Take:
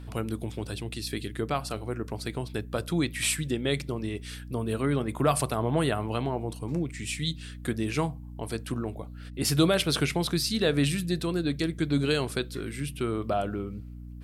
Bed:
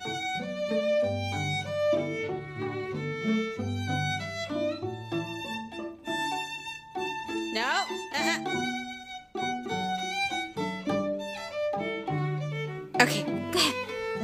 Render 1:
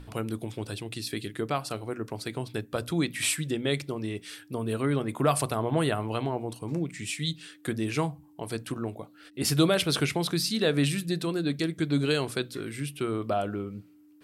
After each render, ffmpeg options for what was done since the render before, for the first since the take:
ffmpeg -i in.wav -af "bandreject=frequency=60:width_type=h:width=6,bandreject=frequency=120:width_type=h:width=6,bandreject=frequency=180:width_type=h:width=6,bandreject=frequency=240:width_type=h:width=6" out.wav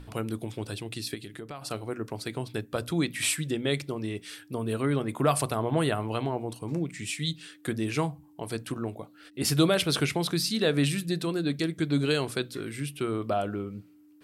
ffmpeg -i in.wav -filter_complex "[0:a]asplit=3[link_01][link_02][link_03];[link_01]afade=type=out:start_time=1.14:duration=0.02[link_04];[link_02]acompressor=threshold=-39dB:ratio=3:attack=3.2:release=140:knee=1:detection=peak,afade=type=in:start_time=1.14:duration=0.02,afade=type=out:start_time=1.61:duration=0.02[link_05];[link_03]afade=type=in:start_time=1.61:duration=0.02[link_06];[link_04][link_05][link_06]amix=inputs=3:normalize=0" out.wav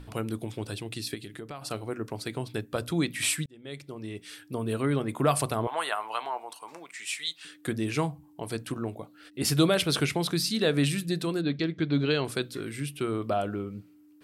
ffmpeg -i in.wav -filter_complex "[0:a]asettb=1/sr,asplit=3[link_01][link_02][link_03];[link_01]atrim=end=5.674[link_04];[link_02]atrim=start=5.67:end=7.45,asetpts=PTS-STARTPTS,afade=type=in:duration=0.004:curve=qsin,afade=type=out:start_time=1.776:duration=0.004:curve=qsin,highpass=frequency=950:width_type=q:width=1.8[link_05];[link_03]atrim=start=7.446[link_06];[link_04][link_05]acrossfade=duration=0.004:curve1=hsin:curve2=qsin[link_07];[link_07][link_06]acrossfade=duration=0.004:curve1=qsin:curve2=hsin,asettb=1/sr,asplit=3[link_08][link_09][link_10];[link_08]atrim=end=11.414[link_11];[link_09]atrim=start=11.41:end=12.25,asetpts=PTS-STARTPTS,afade=type=in:duration=0.004:curve=qsin,afade=type=out:start_time=0.836:duration=0.004:curve=qsin,lowpass=frequency=4700:width=0.5412,lowpass=frequency=4700:width=1.3066[link_12];[link_10]atrim=start=12.246[link_13];[link_11][link_12]acrossfade=duration=0.004:curve1=hsin:curve2=qsin[link_14];[link_14][link_13]acrossfade=duration=0.004:curve1=qsin:curve2=hsin,asplit=2[link_15][link_16];[link_15]atrim=end=3.46,asetpts=PTS-STARTPTS,afade=type=out:start_time=3.456:duration=0.004:curve=hsin[link_17];[link_16]atrim=start=3.46,asetpts=PTS-STARTPTS,afade=type=in:duration=1.09[link_18];[link_17][link_18]concat=n=2:v=0:a=1" out.wav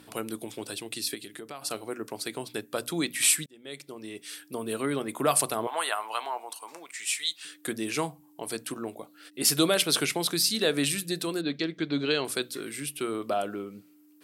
ffmpeg -i in.wav -af "highpass=240,aemphasis=mode=production:type=cd" out.wav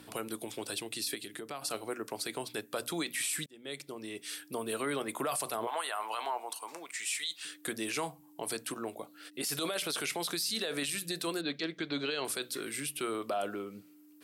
ffmpeg -i in.wav -filter_complex "[0:a]acrossover=split=440[link_01][link_02];[link_01]acompressor=threshold=-45dB:ratio=2[link_03];[link_03][link_02]amix=inputs=2:normalize=0,alimiter=level_in=0.5dB:limit=-24dB:level=0:latency=1:release=24,volume=-0.5dB" out.wav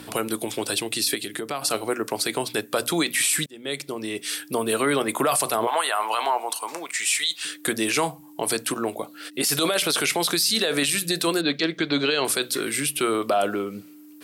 ffmpeg -i in.wav -af "volume=12dB" out.wav

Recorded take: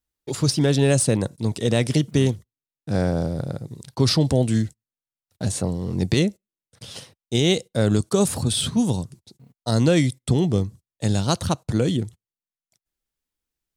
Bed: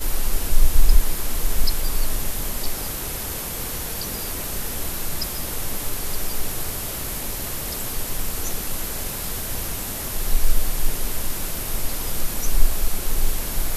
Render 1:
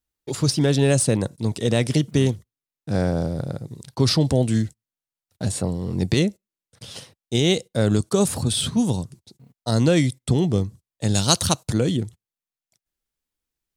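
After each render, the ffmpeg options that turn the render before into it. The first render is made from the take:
ffmpeg -i in.wav -filter_complex "[0:a]asettb=1/sr,asplit=3[link_01][link_02][link_03];[link_01]atrim=end=5.464[link_04];[link_02]atrim=start=5.46:end=6.09,asetpts=PTS-STARTPTS,afade=type=in:duration=0.004:curve=qsin,afade=type=out:start_time=0.626:duration=0.004:curve=qsin,bandreject=frequency=6200:width=9[link_05];[link_03]atrim=start=6.086[link_06];[link_04][link_05]acrossfade=duration=0.004:curve1=hsin:curve2=qsin[link_07];[link_07][link_06]acrossfade=duration=0.004:curve1=qsin:curve2=hsin,asplit=3[link_08][link_09][link_10];[link_08]afade=type=out:start_time=11.14:duration=0.02[link_11];[link_09]highshelf=frequency=2500:gain=12,afade=type=in:start_time=11.14:duration=0.02,afade=type=out:start_time=11.72:duration=0.02[link_12];[link_10]afade=type=in:start_time=11.72:duration=0.02[link_13];[link_11][link_12][link_13]amix=inputs=3:normalize=0" out.wav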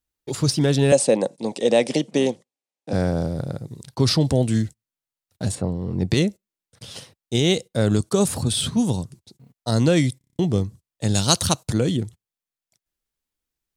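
ffmpeg -i in.wav -filter_complex "[0:a]asettb=1/sr,asplit=3[link_01][link_02][link_03];[link_01]atrim=end=0.924[link_04];[link_02]atrim=start=0.92:end=2.93,asetpts=PTS-STARTPTS,afade=type=in:duration=0.004:curve=qsin,afade=type=out:start_time=2.006:duration=0.004:curve=qsin,highpass=frequency=200:width=0.5412,highpass=frequency=200:width=1.3066,equalizer=frequency=540:width_type=q:width=4:gain=10,equalizer=frequency=800:width_type=q:width=4:gain=8,equalizer=frequency=1400:width_type=q:width=4:gain=-6,equalizer=frequency=2500:width_type=q:width=4:gain=3,lowpass=frequency=9400:width=0.5412,lowpass=frequency=9400:width=1.3066[link_05];[link_03]atrim=start=2.926[link_06];[link_04][link_05]acrossfade=duration=0.004:curve1=hsin:curve2=qsin[link_07];[link_07][link_06]acrossfade=duration=0.004:curve1=qsin:curve2=hsin,asettb=1/sr,asplit=3[link_08][link_09][link_10];[link_08]atrim=end=5.554[link_11];[link_09]atrim=start=5.55:end=6.11,asetpts=PTS-STARTPTS,afade=type=in:duration=0.004:curve=qsin,afade=type=out:start_time=0.556:duration=0.004:curve=qsin,lowpass=frequency=1700:poles=1[link_12];[link_10]atrim=start=6.106[link_13];[link_11][link_12]acrossfade=duration=0.004:curve1=hsin:curve2=qsin[link_14];[link_14][link_13]acrossfade=duration=0.004:curve1=qsin:curve2=hsin,asplit=8[link_15][link_16][link_17][link_18][link_19][link_20][link_21][link_22];[link_15]atrim=end=10.212[link_23];[link_16]atrim=start=10.178:end=10.212[link_24];[link_17]atrim=start=10.178:end=10.212[link_25];[link_18]atrim=start=10.178:end=10.212[link_26];[link_19]atrim=start=10.178:end=10.212[link_27];[link_20]atrim=start=10.178:end=10.212[link_28];[link_21]atrim=start=10.178:end=10.212[link_29];[link_22]atrim=start=10.388[link_30];[link_23][link_24]acrossfade=duration=0.004:curve1=hsin:curve2=hsin[link_31];[link_31][link_25]acrossfade=duration=0.004:curve1=hsin:curve2=hsin[link_32];[link_32][link_26]acrossfade=duration=0.004:curve1=hsin:curve2=hsin[link_33];[link_33][link_27]acrossfade=duration=0.004:curve1=hsin:curve2=hsin[link_34];[link_34][link_28]acrossfade=duration=0.004:curve1=hsin:curve2=hsin[link_35];[link_35][link_29]acrossfade=duration=0.004:curve1=hsin:curve2=hsin[link_36];[link_36][link_30]acrossfade=duration=0.004:curve1=hsin:curve2=hsin" out.wav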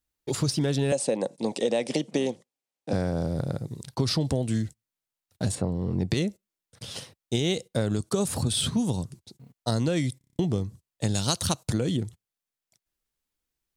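ffmpeg -i in.wav -af "acompressor=threshold=-22dB:ratio=6" out.wav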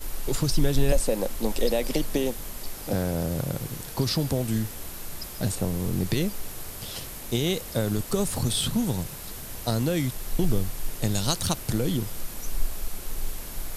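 ffmpeg -i in.wav -i bed.wav -filter_complex "[1:a]volume=-10dB[link_01];[0:a][link_01]amix=inputs=2:normalize=0" out.wav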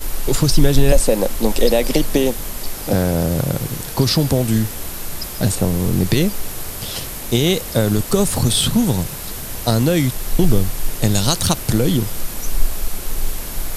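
ffmpeg -i in.wav -af "volume=9.5dB,alimiter=limit=-1dB:level=0:latency=1" out.wav

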